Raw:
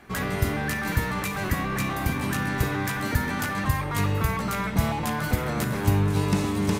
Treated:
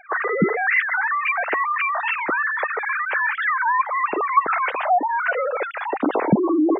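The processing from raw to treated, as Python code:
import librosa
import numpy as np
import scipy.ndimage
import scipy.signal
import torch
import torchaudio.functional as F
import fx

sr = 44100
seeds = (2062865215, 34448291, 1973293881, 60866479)

y = fx.sine_speech(x, sr)
y = fx.spec_gate(y, sr, threshold_db=-15, keep='strong')
y = fx.record_warp(y, sr, rpm=45.0, depth_cents=250.0)
y = F.gain(torch.from_numpy(y), 4.5).numpy()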